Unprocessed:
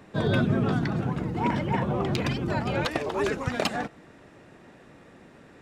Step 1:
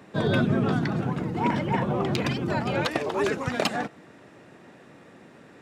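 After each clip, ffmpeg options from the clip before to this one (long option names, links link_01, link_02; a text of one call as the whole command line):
ffmpeg -i in.wav -af "highpass=110,volume=1.5dB" out.wav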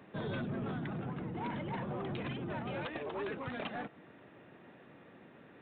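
ffmpeg -i in.wav -af "acompressor=threshold=-32dB:ratio=1.5,aresample=8000,asoftclip=type=tanh:threshold=-26.5dB,aresample=44100,volume=-6.5dB" out.wav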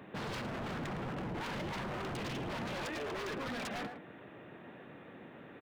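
ffmpeg -i in.wav -filter_complex "[0:a]asplit=2[link_01][link_02];[link_02]adelay=110,highpass=300,lowpass=3400,asoftclip=type=hard:threshold=-39dB,volume=-9dB[link_03];[link_01][link_03]amix=inputs=2:normalize=0,aeval=exprs='0.0112*(abs(mod(val(0)/0.0112+3,4)-2)-1)':channel_layout=same,volume=4.5dB" out.wav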